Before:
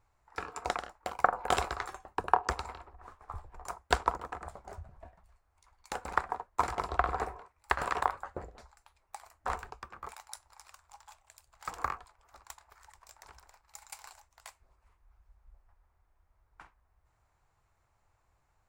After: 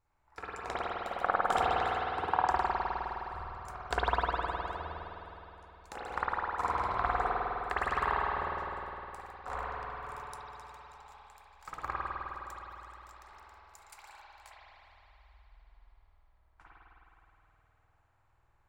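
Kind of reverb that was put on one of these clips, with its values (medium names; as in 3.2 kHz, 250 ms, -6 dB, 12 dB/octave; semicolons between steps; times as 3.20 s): spring tank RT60 3.6 s, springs 51 ms, chirp 25 ms, DRR -9.5 dB; trim -8.5 dB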